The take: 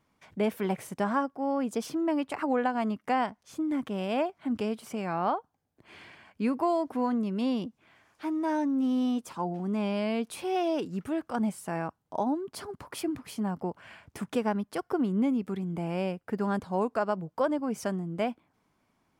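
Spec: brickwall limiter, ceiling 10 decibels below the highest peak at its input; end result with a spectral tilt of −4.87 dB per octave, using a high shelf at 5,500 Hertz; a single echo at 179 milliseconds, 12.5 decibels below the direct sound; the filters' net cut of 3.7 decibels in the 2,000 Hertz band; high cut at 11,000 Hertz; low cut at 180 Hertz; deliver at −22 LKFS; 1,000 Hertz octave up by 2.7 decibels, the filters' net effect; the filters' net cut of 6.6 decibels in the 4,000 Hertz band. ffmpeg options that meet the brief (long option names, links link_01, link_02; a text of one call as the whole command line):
ffmpeg -i in.wav -af "highpass=180,lowpass=11000,equalizer=frequency=1000:width_type=o:gain=5,equalizer=frequency=2000:width_type=o:gain=-5.5,equalizer=frequency=4000:width_type=o:gain=-4.5,highshelf=frequency=5500:gain=-7,alimiter=limit=-23.5dB:level=0:latency=1,aecho=1:1:179:0.237,volume=11.5dB" out.wav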